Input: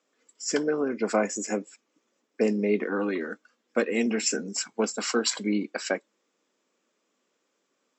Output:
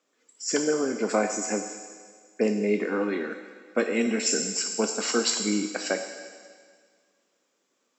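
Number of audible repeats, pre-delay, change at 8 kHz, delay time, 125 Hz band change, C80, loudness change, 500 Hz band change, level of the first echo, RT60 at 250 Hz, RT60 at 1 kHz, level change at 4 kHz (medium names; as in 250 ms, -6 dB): no echo, 16 ms, +4.0 dB, no echo, no reading, 8.5 dB, +1.0 dB, +0.5 dB, no echo, 1.8 s, 1.8 s, +3.0 dB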